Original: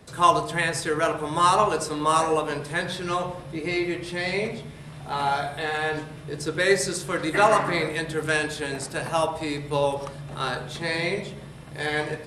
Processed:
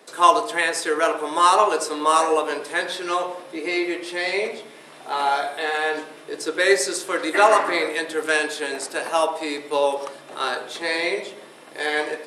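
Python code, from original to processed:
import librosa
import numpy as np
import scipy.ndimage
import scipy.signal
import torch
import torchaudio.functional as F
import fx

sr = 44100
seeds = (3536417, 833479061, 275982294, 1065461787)

y = scipy.signal.sosfilt(scipy.signal.butter(4, 310.0, 'highpass', fs=sr, output='sos'), x)
y = y * librosa.db_to_amplitude(3.5)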